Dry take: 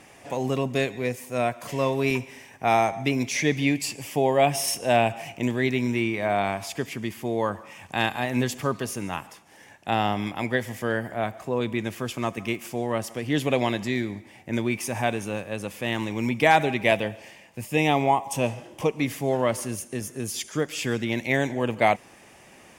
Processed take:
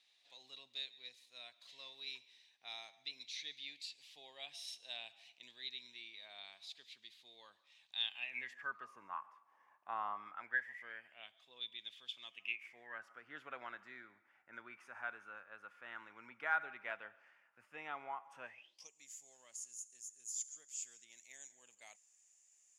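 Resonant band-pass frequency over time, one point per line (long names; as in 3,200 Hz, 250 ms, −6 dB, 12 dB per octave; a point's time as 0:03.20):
resonant band-pass, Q 14
0:07.93 3,900 Hz
0:08.94 1,100 Hz
0:10.14 1,100 Hz
0:11.42 3,500 Hz
0:12.23 3,500 Hz
0:13.08 1,400 Hz
0:18.42 1,400 Hz
0:18.90 7,000 Hz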